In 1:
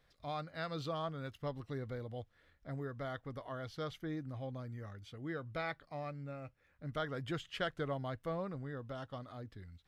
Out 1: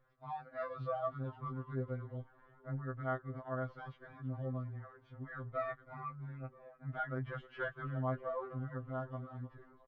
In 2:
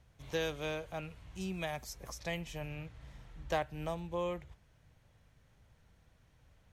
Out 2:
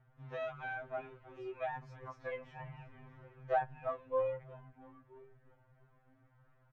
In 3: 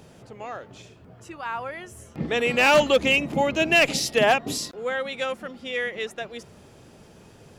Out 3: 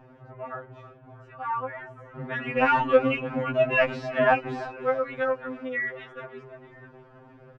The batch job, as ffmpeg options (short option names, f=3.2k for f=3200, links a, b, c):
-filter_complex "[0:a]lowpass=f=1.4k:t=q:w=1.6,asplit=7[a][b][c][d][e][f][g];[b]adelay=324,afreqshift=-43,volume=-15.5dB[h];[c]adelay=648,afreqshift=-86,volume=-20.4dB[i];[d]adelay=972,afreqshift=-129,volume=-25.3dB[j];[e]adelay=1296,afreqshift=-172,volume=-30.1dB[k];[f]adelay=1620,afreqshift=-215,volume=-35dB[l];[g]adelay=1944,afreqshift=-258,volume=-39.9dB[m];[a][h][i][j][k][l][m]amix=inputs=7:normalize=0,afftfilt=real='re*2.45*eq(mod(b,6),0)':imag='im*2.45*eq(mod(b,6),0)':win_size=2048:overlap=0.75"